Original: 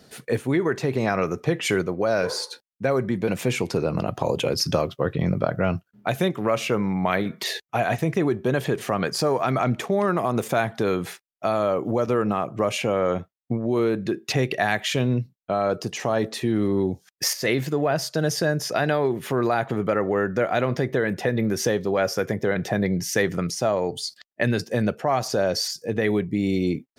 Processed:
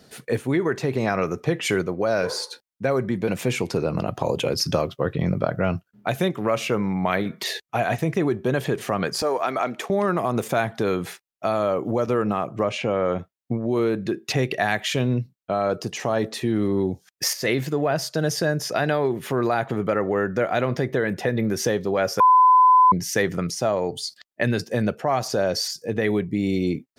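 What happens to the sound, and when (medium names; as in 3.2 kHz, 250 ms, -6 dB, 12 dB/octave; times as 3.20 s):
9.22–9.90 s: high-pass 350 Hz
12.63–13.19 s: distance through air 96 m
22.20–22.92 s: bleep 1.01 kHz -10.5 dBFS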